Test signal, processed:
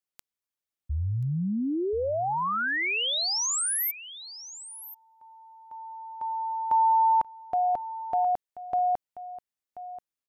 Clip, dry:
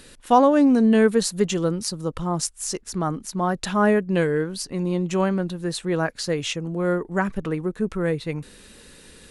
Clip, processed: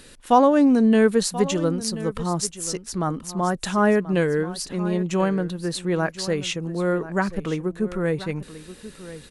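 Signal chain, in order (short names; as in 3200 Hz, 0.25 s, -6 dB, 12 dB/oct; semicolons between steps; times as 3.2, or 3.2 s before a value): echo 1.033 s -15 dB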